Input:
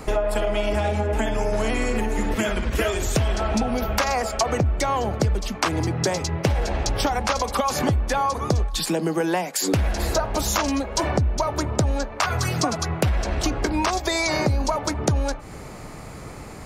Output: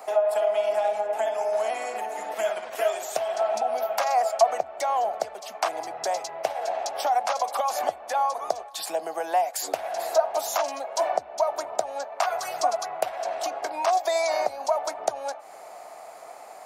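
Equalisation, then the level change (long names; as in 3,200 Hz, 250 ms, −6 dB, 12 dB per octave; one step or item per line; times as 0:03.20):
high-pass with resonance 690 Hz, resonance Q 6.6
high-shelf EQ 9,700 Hz +8.5 dB
−9.0 dB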